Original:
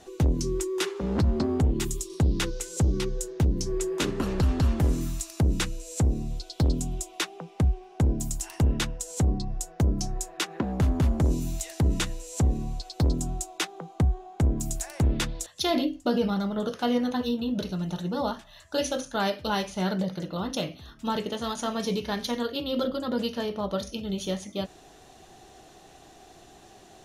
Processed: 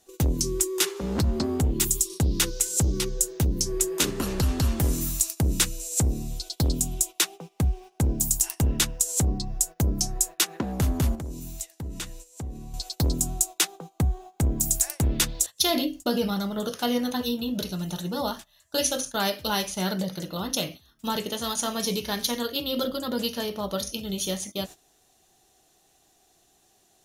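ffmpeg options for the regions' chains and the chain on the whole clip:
-filter_complex "[0:a]asettb=1/sr,asplit=3[a][b][c];[a]atrim=end=11.154[d];[b]atrim=start=11.15:end=12.74,asetpts=PTS-STARTPTS,afade=t=in:d=0.004:c=qsin,afade=t=out:st=1.586:d=0.004:c=qsin,highshelf=f=4.6k:g=-7,agate=range=-33dB:threshold=-41dB:ratio=3:release=100:detection=peak,acompressor=threshold=-40dB:ratio=2:attack=3.2:release=140:knee=1:detection=peak[e];[c]atrim=start=12.736[f];[d][e]acrossfade=d=0.004:c1=hsin:c2=qsin[g];[g][f]acrossfade=d=0.004:c1=qsin:c2=hsin,agate=range=-15dB:threshold=-40dB:ratio=16:detection=peak,aemphasis=mode=production:type=75fm"

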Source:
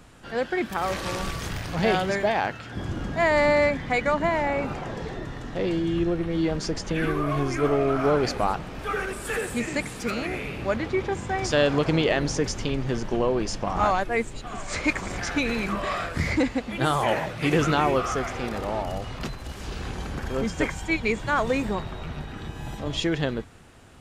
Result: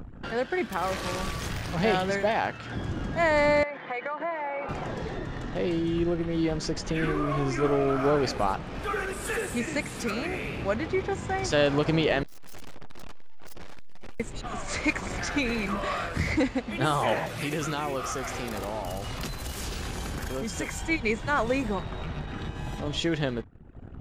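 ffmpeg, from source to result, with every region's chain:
-filter_complex "[0:a]asettb=1/sr,asplit=3[a][b][c];[a]atrim=end=3.634[d];[b]atrim=start=3.63:end=4.69,asetpts=PTS-STARTPTS,afade=t=in:d=0.004:c=qsin,afade=t=out:st=1.056:d=0.004:c=qsin,highpass=480,lowpass=2.4k,acompressor=threshold=-28dB:ratio=4:attack=3.2:release=140:knee=1:detection=peak,aecho=1:1:5.8:0.39,atrim=end_sample=46746[e];[c]atrim=start=4.686[f];[d][e]acrossfade=d=0.004:c1=hsin:c2=qsin[g];[g][f]acrossfade=d=0.004:c1=qsin:c2=hsin,asettb=1/sr,asplit=3[h][i][j];[h]atrim=end=6.994[k];[i]atrim=start=6.99:end=7.68,asetpts=PTS-STARTPTS,afade=t=in:d=0.004:c=qsin,afade=t=out:st=0.686:d=0.004:c=qsin,lowpass=9.4k,asplit=2[l][m];[m]adelay=37,volume=-10.5dB[n];[l][n]amix=inputs=2:normalize=0,atrim=end_sample=30429[o];[j]atrim=start=7.676[p];[k][o]acrossfade=d=0.004:c1=hsin:c2=qsin[q];[q][p]acrossfade=d=0.004:c1=qsin:c2=hsin,asettb=1/sr,asplit=3[r][s][t];[r]atrim=end=12.234[u];[s]atrim=start=12.23:end=14.2,asetpts=PTS-STARTPTS,afade=t=in:d=0.004:c=qsin,afade=t=out:st=1.966:d=0.004:c=qsin,acontrast=58,aeval=exprs='abs(val(0))':c=same,aeval=exprs='(tanh(50.1*val(0)+0.2)-tanh(0.2))/50.1':c=same[v];[t]atrim=start=14.196[w];[u][v]acrossfade=d=0.004:c1=hsin:c2=qsin[x];[x][w]acrossfade=d=0.004:c1=qsin:c2=hsin,asettb=1/sr,asplit=3[y][z][aa];[y]atrim=end=17.264[ab];[z]atrim=start=17.26:end=20.79,asetpts=PTS-STARTPTS,afade=t=in:d=0.004:c=qsin,afade=t=out:st=3.526:d=0.004:c=qsin,aemphasis=mode=production:type=50kf,acompressor=threshold=-30dB:ratio=2:attack=3.2:release=140:knee=1:detection=peak[ac];[aa]atrim=start=20.786[ad];[ab][ac]acrossfade=d=0.004:c1=hsin:c2=qsin[ae];[ae][ad]acrossfade=d=0.004:c1=qsin:c2=hsin,anlmdn=0.0251,acompressor=mode=upward:threshold=-26dB:ratio=2.5,volume=-2dB"

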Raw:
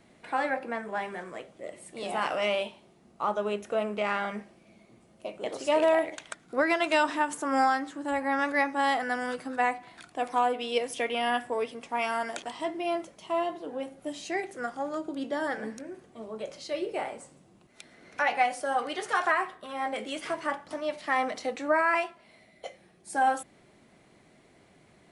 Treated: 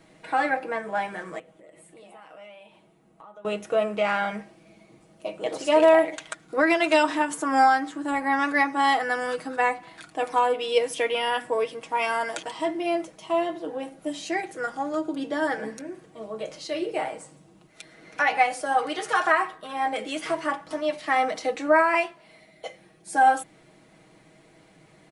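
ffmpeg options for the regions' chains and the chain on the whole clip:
-filter_complex "[0:a]asettb=1/sr,asplit=3[a][b][c];[a]atrim=end=1.394[d];[b]atrim=start=1.39:end=3.45,asetpts=PTS-STARTPTS,afade=t=in:d=0.004:c=qsin,afade=t=out:st=2.056:d=0.004:c=qsin,flanger=delay=3.6:depth=2.8:regen=81:speed=1.2:shape=triangular,acompressor=threshold=-51dB:ratio=4:attack=3.2:release=140:knee=1:detection=peak,equalizer=f=5.1k:w=1.2:g=-7[e];[c]atrim=start=3.446[f];[d][e]acrossfade=d=0.004:c1=hsin:c2=qsin[g];[g][f]acrossfade=d=0.004:c1=qsin:c2=hsin,bandreject=f=60:t=h:w=6,bandreject=f=120:t=h:w=6,bandreject=f=180:t=h:w=6,bandreject=f=240:t=h:w=6,aecho=1:1:6.3:0.59,volume=3dB"

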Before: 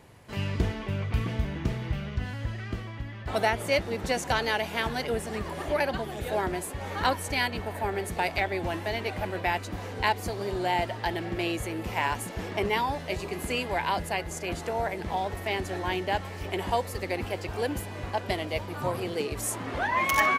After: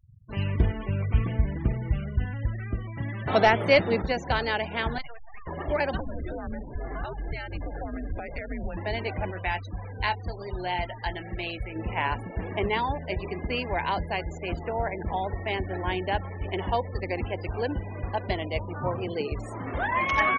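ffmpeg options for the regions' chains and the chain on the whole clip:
-filter_complex "[0:a]asettb=1/sr,asplit=3[a][b][c];[a]atrim=end=2.974[d];[b]atrim=start=2.97:end=4.02,asetpts=PTS-STARTPTS,afade=t=in:d=0.004:c=qsin,afade=t=out:st=1.046:d=0.004:c=qsin,highpass=f=110:w=0.5412,highpass=f=110:w=1.3066,acontrast=70,aeval=exprs='0.355*(abs(mod(val(0)/0.355+3,4)-2)-1)':c=same[e];[c]atrim=start=4.016[f];[d][e]acrossfade=d=0.004:c1=hsin:c2=qsin[g];[g][f]acrossfade=d=0.004:c1=qsin:c2=hsin,asettb=1/sr,asplit=3[h][i][j];[h]atrim=end=4.984[k];[i]atrim=start=4.98:end=5.47,asetpts=PTS-STARTPTS,afade=t=in:d=0.004:c=qsin,afade=t=out:st=0.486:d=0.004:c=qsin,highpass=f=770:w=0.5412,highpass=f=770:w=1.3066,acrusher=bits=5:dc=4:mix=0:aa=0.000001[l];[j]atrim=start=5.466[m];[k][l]acrossfade=d=0.004:c1=hsin:c2=qsin[n];[n][m]acrossfade=d=0.004:c1=qsin:c2=hsin,asettb=1/sr,asplit=3[o][p][q];[o]atrim=end=6.004[r];[p]atrim=start=6:end=8.77,asetpts=PTS-STARTPTS,afade=t=in:d=0.004:c=qsin,afade=t=out:st=2.766:d=0.004:c=qsin,aemphasis=mode=reproduction:type=50kf,acompressor=threshold=-31dB:ratio=8:attack=3.2:release=140:knee=1:detection=peak,afreqshift=-140[s];[q]atrim=start=8.766[t];[r][s]acrossfade=d=0.004:c1=hsin:c2=qsin[u];[u][t]acrossfade=d=0.004:c1=qsin:c2=hsin,asettb=1/sr,asplit=3[v][w][x];[v]atrim=end=9.324[y];[w]atrim=start=9.32:end=11.76,asetpts=PTS-STARTPTS,afade=t=in:d=0.004:c=qsin,afade=t=out:st=2.436:d=0.004:c=qsin,equalizer=f=310:t=o:w=2.8:g=-7.5,asplit=2[z][aa];[aa]adelay=22,volume=-10dB[ab];[z][ab]amix=inputs=2:normalize=0,atrim=end_sample=107604[ac];[x]atrim=start=11.756[ad];[y][ac]acrossfade=d=0.004:c1=hsin:c2=qsin[ae];[ae][ad]acrossfade=d=0.004:c1=qsin:c2=hsin,acrossover=split=5000[af][ag];[ag]acompressor=threshold=-48dB:ratio=4:attack=1:release=60[ah];[af][ah]amix=inputs=2:normalize=0,lowshelf=f=69:g=10.5,afftfilt=real='re*gte(hypot(re,im),0.0158)':imag='im*gte(hypot(re,im),0.0158)':win_size=1024:overlap=0.75"

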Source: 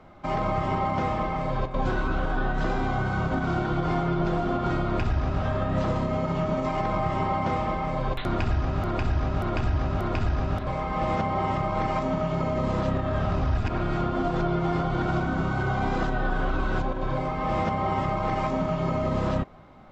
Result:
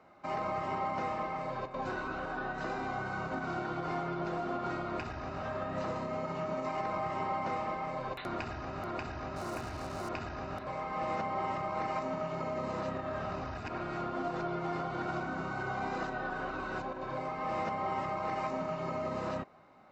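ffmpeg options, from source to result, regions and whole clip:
-filter_complex "[0:a]asettb=1/sr,asplit=3[a][b][c];[a]atrim=end=9.364[d];[b]atrim=start=9.36:end=10.09,asetpts=PTS-STARTPTS,afade=t=in:d=0.004:c=qsin,afade=t=out:st=0.726:d=0.004:c=qsin,lowpass=1.8k,acrusher=bits=5:mix=0:aa=0.5[e];[c]atrim=start=10.086[f];[d][e]acrossfade=d=0.004:c1=hsin:c2=qsin[g];[g][f]acrossfade=d=0.004:c1=qsin:c2=hsin,highpass=f=390:p=1,bandreject=f=3.3k:w=6.1,volume=-6dB"

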